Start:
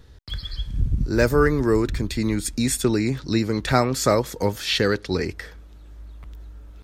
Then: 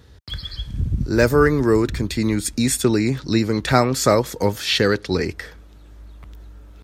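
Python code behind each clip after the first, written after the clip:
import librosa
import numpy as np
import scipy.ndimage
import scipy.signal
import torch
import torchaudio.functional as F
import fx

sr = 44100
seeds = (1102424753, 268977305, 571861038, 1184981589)

y = scipy.signal.sosfilt(scipy.signal.butter(2, 59.0, 'highpass', fs=sr, output='sos'), x)
y = y * librosa.db_to_amplitude(3.0)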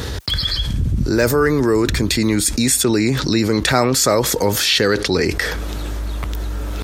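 y = fx.bass_treble(x, sr, bass_db=-4, treble_db=3)
y = fx.env_flatten(y, sr, amount_pct=70)
y = y * librosa.db_to_amplitude(-1.0)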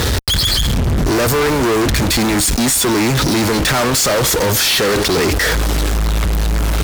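y = fx.fuzz(x, sr, gain_db=38.0, gate_db=-33.0)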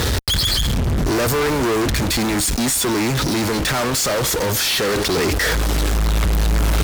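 y = fx.rider(x, sr, range_db=10, speed_s=2.0)
y = y * librosa.db_to_amplitude(-4.0)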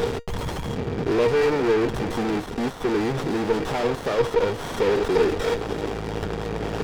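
y = fx.cabinet(x, sr, low_hz=120.0, low_slope=12, high_hz=4500.0, hz=(400.0, 780.0, 1500.0, 2200.0), db=(7, 6, -8, 7))
y = fx.comb_fb(y, sr, f0_hz=470.0, decay_s=0.16, harmonics='odd', damping=0.0, mix_pct=80)
y = fx.running_max(y, sr, window=17)
y = y * librosa.db_to_amplitude(7.0)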